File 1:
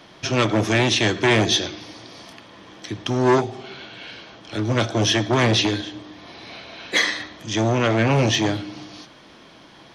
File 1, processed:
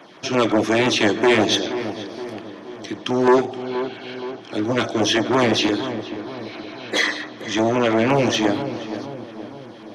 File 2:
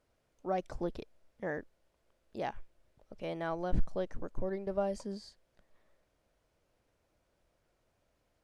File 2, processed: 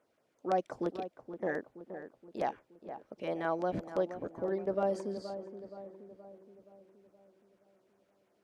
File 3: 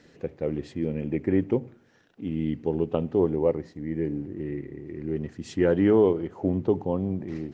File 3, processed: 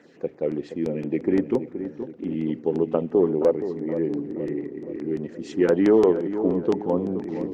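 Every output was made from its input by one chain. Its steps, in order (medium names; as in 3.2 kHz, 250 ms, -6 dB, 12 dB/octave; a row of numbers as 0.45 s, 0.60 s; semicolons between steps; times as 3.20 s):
high-pass 240 Hz 12 dB/octave; treble shelf 3.1 kHz -8 dB; saturation -10 dBFS; LFO notch saw down 5.8 Hz 430–5500 Hz; on a send: filtered feedback delay 473 ms, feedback 56%, low-pass 1.4 kHz, level -10 dB; on the sum: trim +5 dB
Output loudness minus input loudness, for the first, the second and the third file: 0.0 LU, +1.5 LU, +2.5 LU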